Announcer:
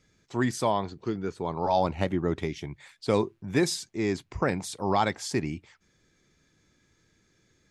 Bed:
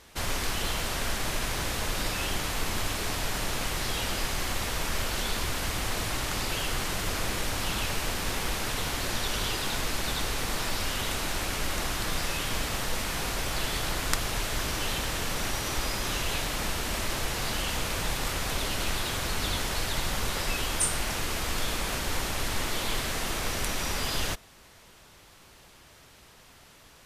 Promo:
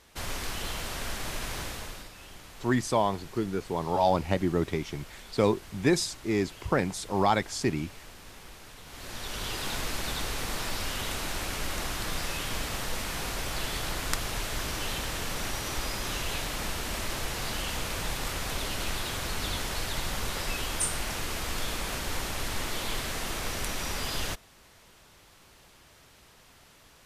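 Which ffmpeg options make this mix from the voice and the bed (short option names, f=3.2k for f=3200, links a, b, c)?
-filter_complex "[0:a]adelay=2300,volume=0.5dB[a];[1:a]volume=10.5dB,afade=t=out:st=1.58:d=0.51:silence=0.223872,afade=t=in:st=8.85:d=0.83:silence=0.177828[b];[a][b]amix=inputs=2:normalize=0"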